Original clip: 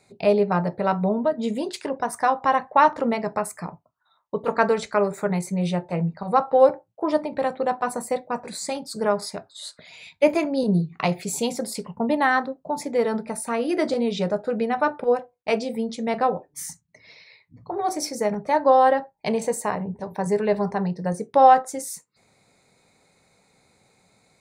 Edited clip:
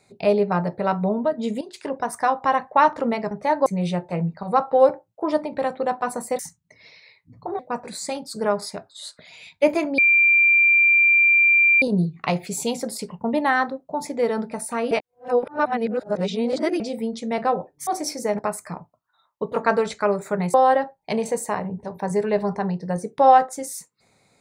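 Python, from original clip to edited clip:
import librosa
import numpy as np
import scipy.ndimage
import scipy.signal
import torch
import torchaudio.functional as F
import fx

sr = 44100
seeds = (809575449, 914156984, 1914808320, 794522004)

y = fx.edit(x, sr, fx.fade_in_from(start_s=1.61, length_s=0.27, curve='qua', floor_db=-12.0),
    fx.swap(start_s=3.31, length_s=2.15, other_s=18.35, other_length_s=0.35),
    fx.insert_tone(at_s=10.58, length_s=1.84, hz=2370.0, db=-12.5),
    fx.reverse_span(start_s=13.67, length_s=1.89),
    fx.move(start_s=16.63, length_s=1.2, to_s=8.19), tone=tone)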